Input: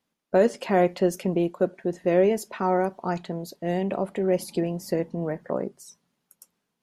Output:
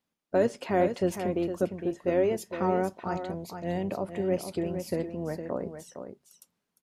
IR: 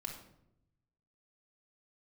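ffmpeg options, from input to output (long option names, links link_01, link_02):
-filter_complex "[0:a]aecho=1:1:459:0.376,asplit=2[link_01][link_02];[link_02]asetrate=22050,aresample=44100,atempo=2,volume=-13dB[link_03];[link_01][link_03]amix=inputs=2:normalize=0,volume=-5dB"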